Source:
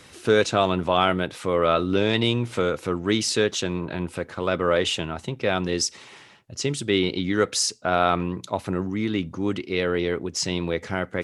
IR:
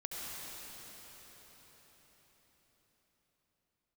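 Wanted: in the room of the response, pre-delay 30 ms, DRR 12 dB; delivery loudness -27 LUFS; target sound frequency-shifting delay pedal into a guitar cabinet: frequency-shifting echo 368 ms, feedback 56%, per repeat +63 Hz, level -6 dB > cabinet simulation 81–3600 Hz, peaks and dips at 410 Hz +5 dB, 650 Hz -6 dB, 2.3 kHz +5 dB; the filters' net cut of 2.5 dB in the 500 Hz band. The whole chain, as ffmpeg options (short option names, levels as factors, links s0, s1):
-filter_complex "[0:a]equalizer=f=500:t=o:g=-5.5,asplit=2[s0][s1];[1:a]atrim=start_sample=2205,adelay=30[s2];[s1][s2]afir=irnorm=-1:irlink=0,volume=0.2[s3];[s0][s3]amix=inputs=2:normalize=0,asplit=8[s4][s5][s6][s7][s8][s9][s10][s11];[s5]adelay=368,afreqshift=63,volume=0.501[s12];[s6]adelay=736,afreqshift=126,volume=0.282[s13];[s7]adelay=1104,afreqshift=189,volume=0.157[s14];[s8]adelay=1472,afreqshift=252,volume=0.0881[s15];[s9]adelay=1840,afreqshift=315,volume=0.0495[s16];[s10]adelay=2208,afreqshift=378,volume=0.0275[s17];[s11]adelay=2576,afreqshift=441,volume=0.0155[s18];[s4][s12][s13][s14][s15][s16][s17][s18]amix=inputs=8:normalize=0,highpass=81,equalizer=f=410:t=q:w=4:g=5,equalizer=f=650:t=q:w=4:g=-6,equalizer=f=2300:t=q:w=4:g=5,lowpass=f=3600:w=0.5412,lowpass=f=3600:w=1.3066,volume=0.75"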